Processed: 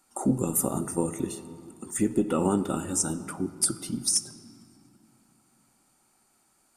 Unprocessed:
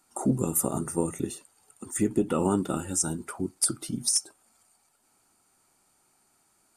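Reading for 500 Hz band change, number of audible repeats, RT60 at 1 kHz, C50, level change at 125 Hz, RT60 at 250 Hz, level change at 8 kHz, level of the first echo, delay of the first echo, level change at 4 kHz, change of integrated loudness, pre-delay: 0.0 dB, none, 2.8 s, 13.5 dB, -0.5 dB, 3.5 s, 0.0 dB, none, none, 0.0 dB, +0.5 dB, 3 ms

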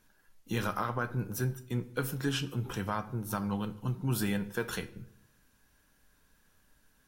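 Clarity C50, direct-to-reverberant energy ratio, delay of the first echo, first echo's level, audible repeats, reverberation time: 16.0 dB, 11.0 dB, none, none, none, 0.75 s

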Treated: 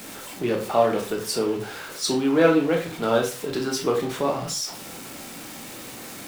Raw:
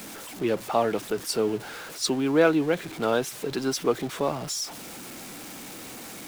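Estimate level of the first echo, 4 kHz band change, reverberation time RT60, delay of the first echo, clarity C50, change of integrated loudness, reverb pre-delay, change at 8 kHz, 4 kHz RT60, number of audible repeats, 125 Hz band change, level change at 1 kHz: none, +2.5 dB, 0.45 s, none, 8.0 dB, +2.5 dB, 14 ms, +2.0 dB, 0.30 s, none, +3.0 dB, +3.0 dB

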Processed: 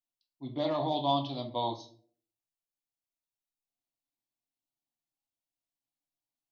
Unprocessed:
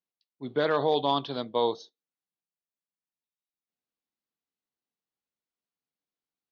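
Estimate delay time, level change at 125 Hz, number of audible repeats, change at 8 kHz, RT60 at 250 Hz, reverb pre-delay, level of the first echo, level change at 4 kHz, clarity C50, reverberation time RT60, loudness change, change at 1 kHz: none, +1.5 dB, none, n/a, 0.65 s, 4 ms, none, -3.0 dB, 11.0 dB, 0.50 s, -4.5 dB, -3.0 dB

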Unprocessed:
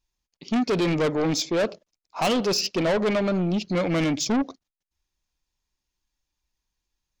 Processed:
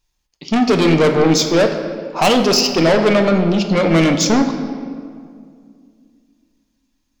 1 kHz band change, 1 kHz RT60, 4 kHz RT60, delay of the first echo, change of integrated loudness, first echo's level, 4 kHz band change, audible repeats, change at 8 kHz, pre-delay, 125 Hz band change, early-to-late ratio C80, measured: +10.5 dB, 2.0 s, 1.3 s, none, +9.5 dB, none, +10.0 dB, none, +9.5 dB, 7 ms, +9.5 dB, 8.5 dB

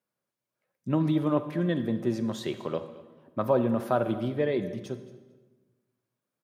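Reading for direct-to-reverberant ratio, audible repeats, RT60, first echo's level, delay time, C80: 10.5 dB, 2, 1.2 s, -19.5 dB, 0.223 s, 12.5 dB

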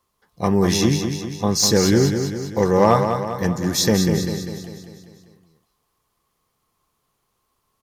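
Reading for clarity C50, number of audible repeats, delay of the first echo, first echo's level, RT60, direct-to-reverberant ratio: none, 6, 0.198 s, -7.0 dB, none, none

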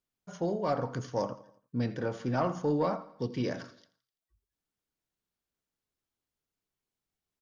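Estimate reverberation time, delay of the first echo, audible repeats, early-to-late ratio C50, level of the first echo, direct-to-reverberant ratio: none, 84 ms, 3, none, -18.0 dB, none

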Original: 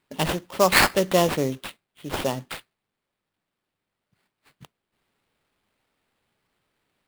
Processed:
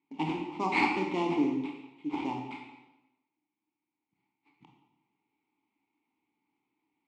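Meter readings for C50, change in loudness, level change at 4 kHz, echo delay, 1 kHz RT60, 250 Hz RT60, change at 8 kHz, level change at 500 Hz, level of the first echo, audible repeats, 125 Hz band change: 3.5 dB, -9.0 dB, -16.0 dB, none, 1.0 s, 1.0 s, under -25 dB, -13.0 dB, none, none, -11.5 dB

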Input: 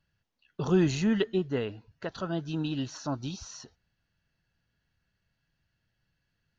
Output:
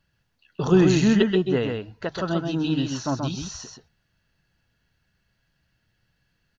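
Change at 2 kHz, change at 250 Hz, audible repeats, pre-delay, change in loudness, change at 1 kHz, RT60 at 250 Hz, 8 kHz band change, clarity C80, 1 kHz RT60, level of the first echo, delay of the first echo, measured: +8.0 dB, +8.0 dB, 1, none, +7.5 dB, +8.0 dB, none, n/a, none, none, -4.5 dB, 0.13 s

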